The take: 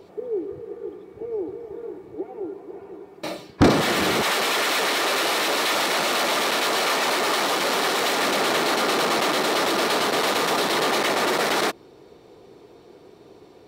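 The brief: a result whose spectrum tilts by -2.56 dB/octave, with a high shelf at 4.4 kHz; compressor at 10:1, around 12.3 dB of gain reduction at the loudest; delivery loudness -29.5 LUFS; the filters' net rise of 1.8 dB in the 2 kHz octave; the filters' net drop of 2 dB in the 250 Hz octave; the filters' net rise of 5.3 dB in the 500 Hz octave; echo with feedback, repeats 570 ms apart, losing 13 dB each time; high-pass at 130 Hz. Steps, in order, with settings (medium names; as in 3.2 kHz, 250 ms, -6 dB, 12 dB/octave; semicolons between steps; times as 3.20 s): high-pass 130 Hz; peaking EQ 250 Hz -7 dB; peaking EQ 500 Hz +8.5 dB; peaking EQ 2 kHz +3 dB; treble shelf 4.4 kHz -6.5 dB; compression 10:1, threshold -22 dBFS; feedback delay 570 ms, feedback 22%, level -13 dB; trim -3.5 dB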